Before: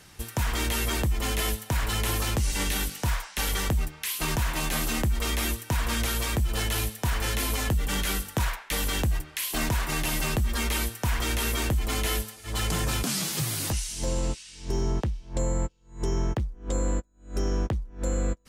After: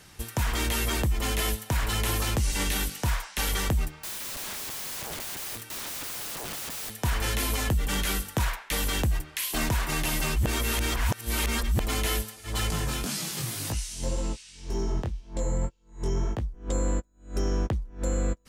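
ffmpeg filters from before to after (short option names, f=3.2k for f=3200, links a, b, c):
-filter_complex "[0:a]asettb=1/sr,asplit=3[a][b][c];[a]atrim=end=4.004[d];[b]atrim=start=4:end=6.92,asetpts=PTS-STARTPTS,afade=t=in:d=0.004:c=qsin,afade=t=out:st=2.916:d=0.004:c=qsin,aeval=exprs='(mod(35.5*val(0)+1,2)-1)/35.5':c=same[e];[c]atrim=start=6.916[f];[d][e]acrossfade=d=0.004:c1=hsin:c2=qsin[g];[g][f]acrossfade=d=0.004:c1=qsin:c2=hsin,asettb=1/sr,asplit=3[h][i][j];[h]atrim=end=12.704[k];[i]atrim=start=12.7:end=16.54,asetpts=PTS-STARTPTS,afade=t=in:d=0.004:c=qsin,afade=t=out:st=3.836:d=0.004:c=qsin,flanger=delay=18:depth=5.3:speed=1.9[l];[j]atrim=start=16.536[m];[k][l]acrossfade=d=0.004:c1=hsin:c2=qsin[n];[n][m]acrossfade=d=0.004:c1=qsin:c2=hsin,asplit=3[o][p][q];[o]atrim=end=10.362[r];[p]atrim=start=10.358:end=11.802,asetpts=PTS-STARTPTS,areverse[s];[q]atrim=start=11.798[t];[r][s]acrossfade=d=0.004:c1=hsin:c2=hsin[u];[u][t]acrossfade=d=0.004:c1=hsin:c2=hsin"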